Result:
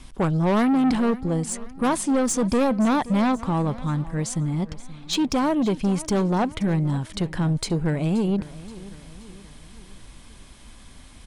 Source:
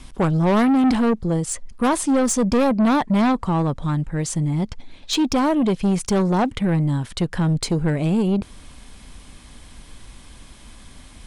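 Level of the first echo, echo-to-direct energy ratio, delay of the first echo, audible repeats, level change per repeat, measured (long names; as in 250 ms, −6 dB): −18.0 dB, −17.0 dB, 527 ms, 3, −6.0 dB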